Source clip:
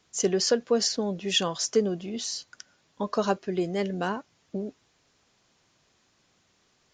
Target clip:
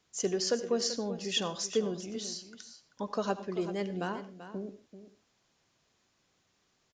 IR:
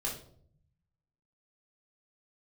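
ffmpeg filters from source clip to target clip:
-filter_complex "[0:a]aecho=1:1:387:0.237,asplit=2[a][b];[1:a]atrim=start_sample=2205,atrim=end_sample=4410,adelay=72[c];[b][c]afir=irnorm=-1:irlink=0,volume=-17dB[d];[a][d]amix=inputs=2:normalize=0,volume=-6.5dB"

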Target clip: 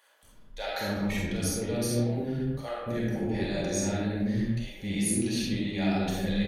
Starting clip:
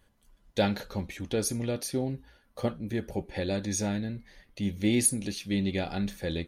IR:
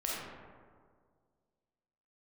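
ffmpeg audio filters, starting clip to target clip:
-filter_complex "[0:a]areverse,acompressor=threshold=-37dB:ratio=6,areverse,acrossover=split=520[a][b];[a]adelay=230[c];[c][b]amix=inputs=2:normalize=0[d];[1:a]atrim=start_sample=2205,afade=t=out:st=0.33:d=0.01,atrim=end_sample=14994[e];[d][e]afir=irnorm=-1:irlink=0,volume=7.5dB"

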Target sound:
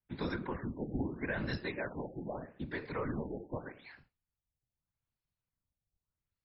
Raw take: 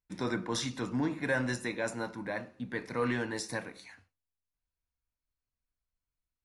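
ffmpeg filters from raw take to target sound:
-filter_complex "[0:a]afftfilt=real='hypot(re,im)*cos(2*PI*random(0))':imag='hypot(re,im)*sin(2*PI*random(1))':win_size=512:overlap=0.75,acrossover=split=160|3000[a][b][c];[b]acompressor=threshold=-41dB:ratio=4[d];[a][d][c]amix=inputs=3:normalize=0,afftfilt=real='re*lt(b*sr/1024,820*pow(5600/820,0.5+0.5*sin(2*PI*0.81*pts/sr)))':imag='im*lt(b*sr/1024,820*pow(5600/820,0.5+0.5*sin(2*PI*0.81*pts/sr)))':win_size=1024:overlap=0.75,volume=5.5dB"

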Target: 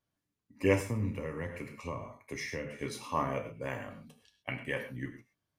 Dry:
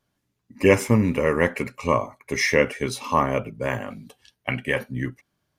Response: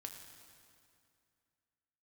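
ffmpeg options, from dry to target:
-filter_complex "[1:a]atrim=start_sample=2205,atrim=end_sample=6174[a];[0:a][a]afir=irnorm=-1:irlink=0,asettb=1/sr,asplit=3[b][c][d];[b]atrim=end=0.804[e];[c]atrim=start=0.8:end=2.79,asetpts=PTS-STARTPTS,afade=t=in:d=0.004:c=qsin,afade=t=out:st=1.986:d=0.004:c=qsin,acrossover=split=160[f][g];[g]acompressor=threshold=-31dB:ratio=5[h];[f][h]amix=inputs=2:normalize=0[i];[d]atrim=start=2.786[j];[e][i]acrossfade=d=0.004:c1=hsin:c2=qsin[k];[k][j]acrossfade=d=0.004:c1=qsin:c2=hsin,volume=-6dB"

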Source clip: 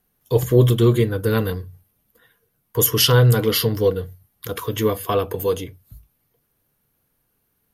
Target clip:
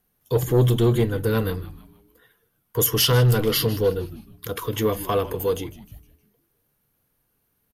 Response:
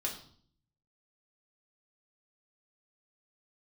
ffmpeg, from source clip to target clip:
-filter_complex "[0:a]asoftclip=type=tanh:threshold=-5.5dB,asplit=5[a][b][c][d][e];[b]adelay=155,afreqshift=-130,volume=-16.5dB[f];[c]adelay=310,afreqshift=-260,volume=-23.4dB[g];[d]adelay=465,afreqshift=-390,volume=-30.4dB[h];[e]adelay=620,afreqshift=-520,volume=-37.3dB[i];[a][f][g][h][i]amix=inputs=5:normalize=0,acontrast=39,volume=-7dB"

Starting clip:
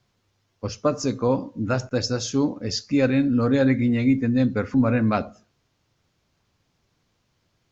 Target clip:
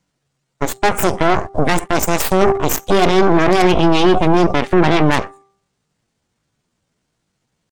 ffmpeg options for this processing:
-af "aeval=exprs='0.376*(cos(1*acos(clip(val(0)/0.376,-1,1)))-cos(1*PI/2))+0.0376*(cos(4*acos(clip(val(0)/0.376,-1,1)))-cos(4*PI/2))+0.0119*(cos(5*acos(clip(val(0)/0.376,-1,1)))-cos(5*PI/2))+0.0119*(cos(6*acos(clip(val(0)/0.376,-1,1)))-cos(6*PI/2))+0.00944*(cos(8*acos(clip(val(0)/0.376,-1,1)))-cos(8*PI/2))':c=same,asetrate=60591,aresample=44100,atempo=0.727827,aeval=exprs='0.398*(cos(1*acos(clip(val(0)/0.398,-1,1)))-cos(1*PI/2))+0.0891*(cos(5*acos(clip(val(0)/0.398,-1,1)))-cos(5*PI/2))+0.112*(cos(6*acos(clip(val(0)/0.398,-1,1)))-cos(6*PI/2))+0.126*(cos(7*acos(clip(val(0)/0.398,-1,1)))-cos(7*PI/2))':c=same,bandreject=f=393.4:t=h:w=4,bandreject=f=786.8:t=h:w=4,bandreject=f=1.1802k:t=h:w=4,alimiter=level_in=19dB:limit=-1dB:release=50:level=0:latency=1,volume=-1dB"

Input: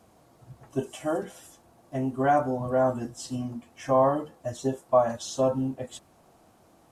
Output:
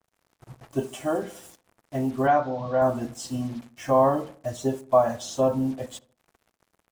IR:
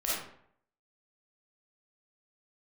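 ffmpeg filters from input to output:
-filter_complex "[0:a]acrusher=bits=7:mix=0:aa=0.5,asettb=1/sr,asplit=3[a][b][c];[a]atrim=end=2.274[d];[b]atrim=start=2.27:end=2.82,asetpts=PTS-STARTPTS,afade=t=in:d=0.004:c=qsin,afade=t=out:st=0.546:d=0.004:c=qsin,highpass=140,equalizer=f=240:t=q:w=4:g=-5,equalizer=f=370:t=q:w=4:g=-9,equalizer=f=3.8k:t=q:w=4:g=4,lowpass=f=5.2k:w=0.5412,lowpass=f=5.2k:w=1.3066[e];[c]atrim=start=2.816[f];[d][e]acrossfade=d=0.004:c1=hsin:c2=qsin[g];[g][f]acrossfade=d=0.004:c1=qsin:c2=hsin,asplit=2[h][i];[i]adelay=72,lowpass=f=1.2k:p=1,volume=-17dB,asplit=2[j][k];[k]adelay=72,lowpass=f=1.2k:p=1,volume=0.5,asplit=2[l][m];[m]adelay=72,lowpass=f=1.2k:p=1,volume=0.5,asplit=2[n][o];[o]adelay=72,lowpass=f=1.2k:p=1,volume=0.5[p];[h][j][l][n][p]amix=inputs=5:normalize=0,adynamicequalizer=threshold=0.00891:dfrequency=2700:dqfactor=0.7:tfrequency=2700:tqfactor=0.7:attack=5:release=100:ratio=0.375:range=2:mode=cutabove:tftype=highshelf,volume=2dB"

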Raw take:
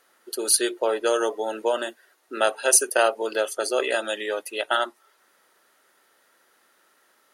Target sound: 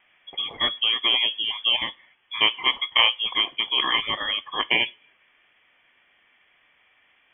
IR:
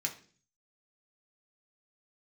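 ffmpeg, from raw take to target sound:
-filter_complex "[0:a]aemphasis=mode=production:type=75kf,asplit=2[a][b];[1:a]atrim=start_sample=2205[c];[b][c]afir=irnorm=-1:irlink=0,volume=-14.5dB[d];[a][d]amix=inputs=2:normalize=0,lowpass=f=3.1k:t=q:w=0.5098,lowpass=f=3.1k:t=q:w=0.6013,lowpass=f=3.1k:t=q:w=0.9,lowpass=f=3.1k:t=q:w=2.563,afreqshift=-3700"

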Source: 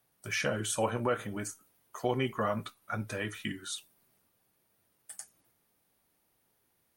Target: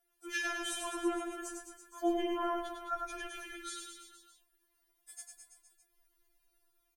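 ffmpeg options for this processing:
-filter_complex "[0:a]afreqshift=-34,asplit=2[a][b];[b]aecho=0:1:100|210|331|464.1|610.5:0.631|0.398|0.251|0.158|0.1[c];[a][c]amix=inputs=2:normalize=0,asubboost=boost=6:cutoff=130,afftfilt=real='re*4*eq(mod(b,16),0)':imag='im*4*eq(mod(b,16),0)':win_size=2048:overlap=0.75,volume=-2.5dB"

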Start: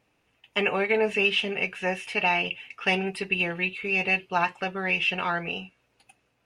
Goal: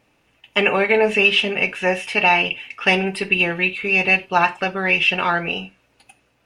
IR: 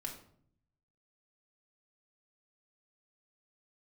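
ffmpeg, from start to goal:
-filter_complex "[0:a]asplit=2[a][b];[1:a]atrim=start_sample=2205,atrim=end_sample=4410[c];[b][c]afir=irnorm=-1:irlink=0,volume=-4.5dB[d];[a][d]amix=inputs=2:normalize=0,volume=5dB"

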